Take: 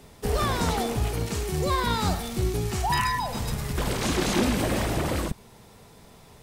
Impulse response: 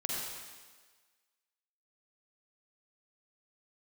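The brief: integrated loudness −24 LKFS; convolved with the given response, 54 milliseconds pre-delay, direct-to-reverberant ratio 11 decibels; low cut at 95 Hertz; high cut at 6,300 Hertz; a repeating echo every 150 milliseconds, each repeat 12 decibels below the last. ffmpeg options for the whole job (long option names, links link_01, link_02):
-filter_complex "[0:a]highpass=95,lowpass=6300,aecho=1:1:150|300|450:0.251|0.0628|0.0157,asplit=2[link_01][link_02];[1:a]atrim=start_sample=2205,adelay=54[link_03];[link_02][link_03]afir=irnorm=-1:irlink=0,volume=-15.5dB[link_04];[link_01][link_04]amix=inputs=2:normalize=0,volume=3dB"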